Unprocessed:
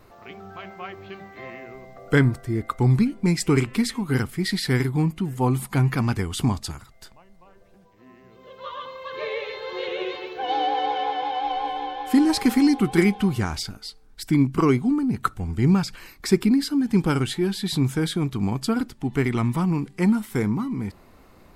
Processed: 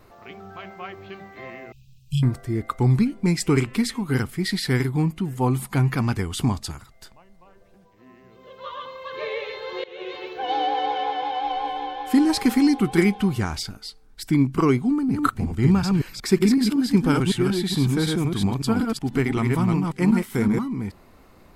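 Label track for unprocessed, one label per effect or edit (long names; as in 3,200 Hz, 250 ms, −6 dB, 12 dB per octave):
1.720000	2.230000	linear-phase brick-wall band-stop 170–2,400 Hz
9.840000	10.240000	fade in, from −20.5 dB
14.900000	20.590000	delay that plays each chunk backwards 186 ms, level −3 dB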